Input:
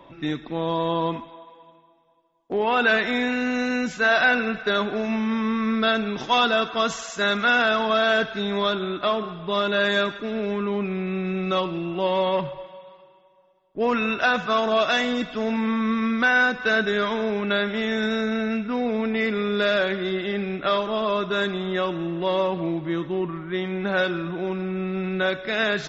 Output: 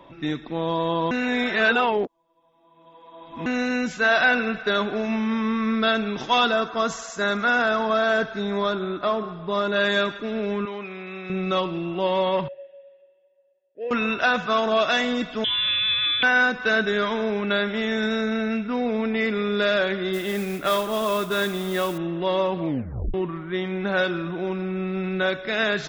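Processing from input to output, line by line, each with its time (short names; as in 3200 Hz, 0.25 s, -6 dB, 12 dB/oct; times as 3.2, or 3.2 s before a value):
1.11–3.46 reverse
6.52–9.76 bell 3000 Hz -8 dB 0.87 oct
10.65–11.3 HPF 830 Hz 6 dB/oct
12.48–13.91 vowel filter e
15.44–16.23 inverted band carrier 3700 Hz
20.13–21.98 modulation noise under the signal 17 dB
22.66 tape stop 0.48 s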